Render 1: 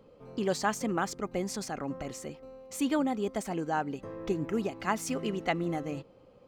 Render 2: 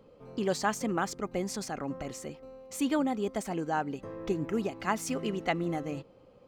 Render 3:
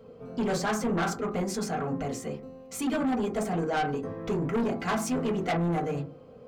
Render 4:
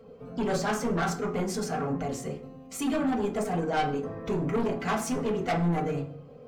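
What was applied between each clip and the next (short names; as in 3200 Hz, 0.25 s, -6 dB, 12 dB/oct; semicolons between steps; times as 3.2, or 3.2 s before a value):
nothing audible
reverb RT60 0.30 s, pre-delay 3 ms, DRR -3 dB; soft clip -25 dBFS, distortion -9 dB; gain +1.5 dB
bin magnitudes rounded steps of 15 dB; shoebox room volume 96 m³, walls mixed, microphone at 0.31 m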